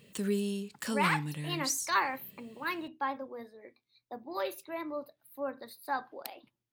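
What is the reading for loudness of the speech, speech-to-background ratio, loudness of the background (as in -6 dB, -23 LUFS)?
-35.5 LUFS, -1.0 dB, -34.5 LUFS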